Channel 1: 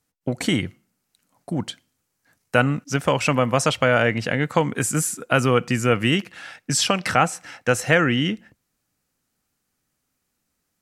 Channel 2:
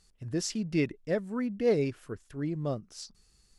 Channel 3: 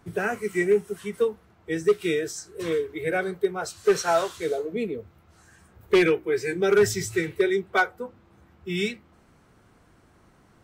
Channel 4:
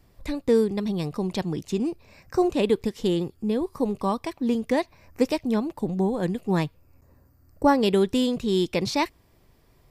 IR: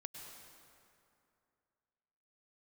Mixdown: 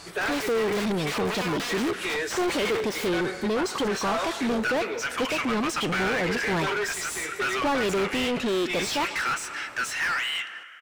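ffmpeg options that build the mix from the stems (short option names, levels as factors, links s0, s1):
-filter_complex "[0:a]highpass=f=1300:w=0.5412,highpass=f=1300:w=1.3066,flanger=delay=2.4:depth=5.6:regen=80:speed=0.54:shape=triangular,adelay=2100,volume=0.211,asplit=2[s0][s1];[s1]volume=0.211[s2];[1:a]acompressor=threshold=0.0158:ratio=12,aeval=exprs='(mod(188*val(0)+1,2)-1)/188':c=same,volume=1[s3];[2:a]highpass=f=1100:p=1,alimiter=limit=0.0668:level=0:latency=1:release=153,volume=0.188,asplit=2[s4][s5];[s5]volume=0.473[s6];[3:a]volume=0.237,asplit=2[s7][s8];[s8]volume=0.126[s9];[4:a]atrim=start_sample=2205[s10];[s2][s6][s9]amix=inputs=3:normalize=0[s11];[s11][s10]afir=irnorm=-1:irlink=0[s12];[s0][s3][s4][s7][s12]amix=inputs=5:normalize=0,asplit=2[s13][s14];[s14]highpass=f=720:p=1,volume=56.2,asoftclip=type=tanh:threshold=0.133[s15];[s13][s15]amix=inputs=2:normalize=0,lowpass=f=2600:p=1,volume=0.501"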